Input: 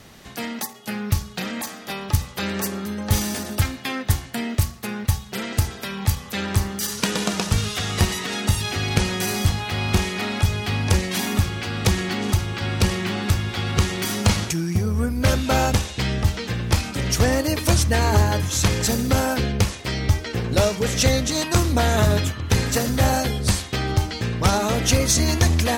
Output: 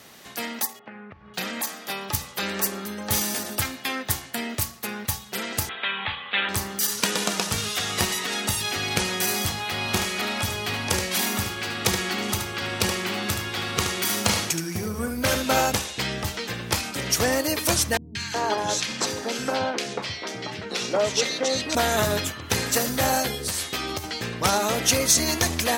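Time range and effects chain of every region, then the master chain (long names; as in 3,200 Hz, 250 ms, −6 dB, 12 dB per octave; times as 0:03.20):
0:00.79–0:01.34: low-pass filter 2,200 Hz 24 dB per octave + downward compressor 16 to 1, threshold −33 dBFS
0:05.69–0:06.49: Butterworth low-pass 3,600 Hz 72 dB per octave + tilt shelving filter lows −9 dB, about 670 Hz
0:09.78–0:15.61: high-pass filter 41 Hz + single-tap delay 74 ms −7 dB
0:17.97–0:21.75: band-pass filter 160–5,500 Hz + three-band delay without the direct sound lows, highs, mids 180/370 ms, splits 210/1,700 Hz
0:23.33–0:24.04: high-shelf EQ 10,000 Hz +5.5 dB + double-tracking delay 12 ms −3 dB + downward compressor, threshold −21 dBFS
whole clip: high-pass filter 380 Hz 6 dB per octave; high-shelf EQ 12,000 Hz +8.5 dB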